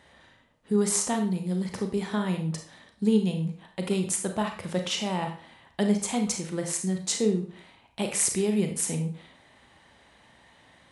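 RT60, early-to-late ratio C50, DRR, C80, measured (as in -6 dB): 0.50 s, 7.5 dB, 4.0 dB, 12.5 dB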